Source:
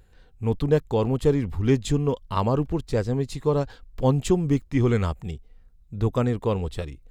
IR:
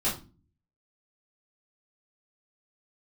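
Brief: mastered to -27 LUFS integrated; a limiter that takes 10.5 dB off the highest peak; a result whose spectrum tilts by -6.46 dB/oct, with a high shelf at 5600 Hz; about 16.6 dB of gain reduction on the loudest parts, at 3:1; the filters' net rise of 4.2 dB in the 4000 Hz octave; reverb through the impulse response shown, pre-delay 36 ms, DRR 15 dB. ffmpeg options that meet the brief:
-filter_complex "[0:a]equalizer=f=4k:t=o:g=7.5,highshelf=f=5.6k:g=-6.5,acompressor=threshold=-38dB:ratio=3,alimiter=level_in=9.5dB:limit=-24dB:level=0:latency=1,volume=-9.5dB,asplit=2[a][b];[1:a]atrim=start_sample=2205,adelay=36[c];[b][c]afir=irnorm=-1:irlink=0,volume=-23.5dB[d];[a][d]amix=inputs=2:normalize=0,volume=16.5dB"

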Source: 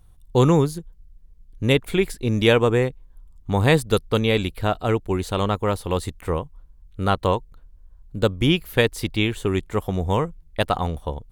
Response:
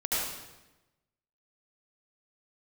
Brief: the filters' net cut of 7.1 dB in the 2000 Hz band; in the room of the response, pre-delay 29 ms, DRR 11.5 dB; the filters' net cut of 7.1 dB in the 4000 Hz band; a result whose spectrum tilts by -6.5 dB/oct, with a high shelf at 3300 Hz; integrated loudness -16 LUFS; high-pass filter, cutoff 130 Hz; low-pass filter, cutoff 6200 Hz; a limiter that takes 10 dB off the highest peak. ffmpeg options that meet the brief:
-filter_complex "[0:a]highpass=130,lowpass=6.2k,equalizer=f=2k:t=o:g=-8,highshelf=f=3.3k:g=4.5,equalizer=f=4k:t=o:g=-8.5,alimiter=limit=-15.5dB:level=0:latency=1,asplit=2[a][b];[1:a]atrim=start_sample=2205,adelay=29[c];[b][c]afir=irnorm=-1:irlink=0,volume=-20.5dB[d];[a][d]amix=inputs=2:normalize=0,volume=12dB"

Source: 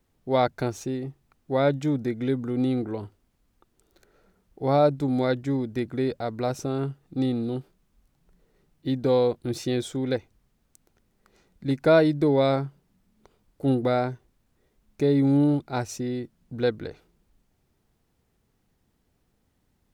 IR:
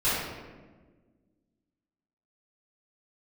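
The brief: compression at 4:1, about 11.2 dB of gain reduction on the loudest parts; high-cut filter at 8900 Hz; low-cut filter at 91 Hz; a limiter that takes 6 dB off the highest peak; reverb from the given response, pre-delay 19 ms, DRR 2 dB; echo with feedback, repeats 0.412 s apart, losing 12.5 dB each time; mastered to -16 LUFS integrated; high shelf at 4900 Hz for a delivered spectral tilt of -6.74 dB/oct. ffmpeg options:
-filter_complex "[0:a]highpass=91,lowpass=8.9k,highshelf=f=4.9k:g=7,acompressor=threshold=-27dB:ratio=4,alimiter=limit=-21.5dB:level=0:latency=1,aecho=1:1:412|824|1236:0.237|0.0569|0.0137,asplit=2[a][b];[1:a]atrim=start_sample=2205,adelay=19[c];[b][c]afir=irnorm=-1:irlink=0,volume=-15.5dB[d];[a][d]amix=inputs=2:normalize=0,volume=15dB"

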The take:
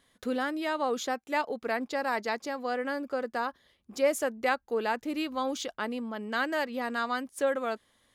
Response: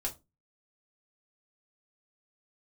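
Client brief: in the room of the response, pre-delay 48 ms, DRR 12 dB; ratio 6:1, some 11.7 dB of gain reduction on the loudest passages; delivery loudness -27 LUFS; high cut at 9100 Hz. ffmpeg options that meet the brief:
-filter_complex "[0:a]lowpass=9.1k,acompressor=threshold=-33dB:ratio=6,asplit=2[a][b];[1:a]atrim=start_sample=2205,adelay=48[c];[b][c]afir=irnorm=-1:irlink=0,volume=-14dB[d];[a][d]amix=inputs=2:normalize=0,volume=10.5dB"

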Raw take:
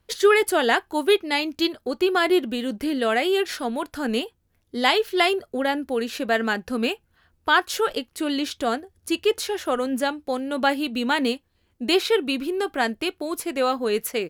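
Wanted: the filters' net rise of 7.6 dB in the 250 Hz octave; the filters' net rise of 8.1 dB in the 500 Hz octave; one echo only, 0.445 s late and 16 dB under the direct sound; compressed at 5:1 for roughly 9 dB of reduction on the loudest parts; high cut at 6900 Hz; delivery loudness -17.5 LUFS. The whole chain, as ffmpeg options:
-af "lowpass=6.9k,equalizer=f=250:t=o:g=6.5,equalizer=f=500:t=o:g=8,acompressor=threshold=-14dB:ratio=5,aecho=1:1:445:0.158,volume=3dB"

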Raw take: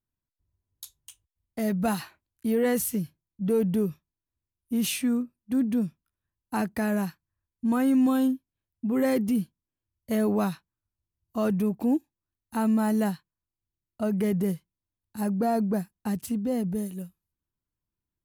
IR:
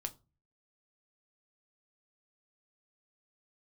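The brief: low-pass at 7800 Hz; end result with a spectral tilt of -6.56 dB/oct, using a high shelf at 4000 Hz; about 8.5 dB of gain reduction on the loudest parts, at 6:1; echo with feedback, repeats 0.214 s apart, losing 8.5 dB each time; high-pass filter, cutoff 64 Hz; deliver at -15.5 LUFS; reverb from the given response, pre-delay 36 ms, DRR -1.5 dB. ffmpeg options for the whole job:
-filter_complex "[0:a]highpass=64,lowpass=7.8k,highshelf=f=4k:g=-4,acompressor=threshold=-29dB:ratio=6,aecho=1:1:214|428|642|856:0.376|0.143|0.0543|0.0206,asplit=2[a][b];[1:a]atrim=start_sample=2205,adelay=36[c];[b][c]afir=irnorm=-1:irlink=0,volume=3dB[d];[a][d]amix=inputs=2:normalize=0,volume=15dB"

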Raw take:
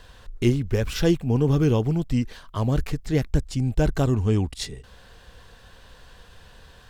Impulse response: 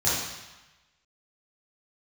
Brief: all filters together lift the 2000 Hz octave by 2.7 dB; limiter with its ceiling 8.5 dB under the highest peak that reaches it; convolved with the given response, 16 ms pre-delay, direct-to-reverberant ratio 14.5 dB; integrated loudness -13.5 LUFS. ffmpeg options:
-filter_complex "[0:a]equalizer=f=2k:t=o:g=3.5,alimiter=limit=-15dB:level=0:latency=1,asplit=2[a][b];[1:a]atrim=start_sample=2205,adelay=16[c];[b][c]afir=irnorm=-1:irlink=0,volume=-28dB[d];[a][d]amix=inputs=2:normalize=0,volume=13dB"

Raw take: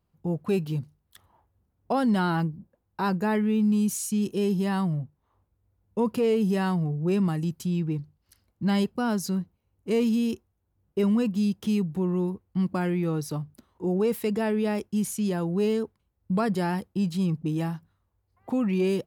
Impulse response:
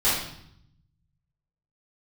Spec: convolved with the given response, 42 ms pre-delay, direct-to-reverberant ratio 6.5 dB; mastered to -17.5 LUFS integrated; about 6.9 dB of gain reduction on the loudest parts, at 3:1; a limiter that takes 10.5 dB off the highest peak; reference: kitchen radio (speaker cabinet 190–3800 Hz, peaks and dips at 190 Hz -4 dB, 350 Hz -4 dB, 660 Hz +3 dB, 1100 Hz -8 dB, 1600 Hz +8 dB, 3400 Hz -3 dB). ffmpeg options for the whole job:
-filter_complex "[0:a]acompressor=threshold=-30dB:ratio=3,alimiter=level_in=7dB:limit=-24dB:level=0:latency=1,volume=-7dB,asplit=2[a][b];[1:a]atrim=start_sample=2205,adelay=42[c];[b][c]afir=irnorm=-1:irlink=0,volume=-21dB[d];[a][d]amix=inputs=2:normalize=0,highpass=190,equalizer=f=190:t=q:w=4:g=-4,equalizer=f=350:t=q:w=4:g=-4,equalizer=f=660:t=q:w=4:g=3,equalizer=f=1.1k:t=q:w=4:g=-8,equalizer=f=1.6k:t=q:w=4:g=8,equalizer=f=3.4k:t=q:w=4:g=-3,lowpass=f=3.8k:w=0.5412,lowpass=f=3.8k:w=1.3066,volume=24dB"

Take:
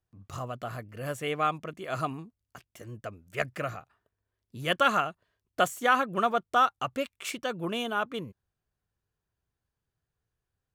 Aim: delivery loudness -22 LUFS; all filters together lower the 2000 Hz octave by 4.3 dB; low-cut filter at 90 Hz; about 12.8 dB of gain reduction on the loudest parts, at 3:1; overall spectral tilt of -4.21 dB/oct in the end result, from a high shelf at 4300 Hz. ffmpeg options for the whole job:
-af "highpass=90,equalizer=f=2k:t=o:g=-8,highshelf=f=4.3k:g=6,acompressor=threshold=-38dB:ratio=3,volume=19dB"

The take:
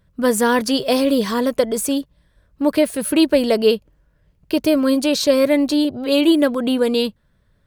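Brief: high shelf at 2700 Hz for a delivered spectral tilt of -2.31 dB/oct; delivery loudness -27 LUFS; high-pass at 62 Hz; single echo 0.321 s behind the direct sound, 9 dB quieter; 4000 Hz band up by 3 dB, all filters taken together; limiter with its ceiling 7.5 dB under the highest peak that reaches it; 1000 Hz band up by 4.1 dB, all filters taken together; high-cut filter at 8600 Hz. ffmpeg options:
-af "highpass=62,lowpass=8.6k,equalizer=f=1k:t=o:g=5,highshelf=f=2.7k:g=-4,equalizer=f=4k:t=o:g=7,alimiter=limit=-10.5dB:level=0:latency=1,aecho=1:1:321:0.355,volume=-7.5dB"

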